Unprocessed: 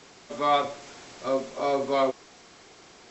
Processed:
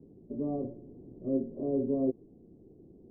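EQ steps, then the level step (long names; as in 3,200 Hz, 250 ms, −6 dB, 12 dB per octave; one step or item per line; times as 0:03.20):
inverse Chebyshev low-pass filter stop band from 1,600 Hz, stop band 70 dB
+5.0 dB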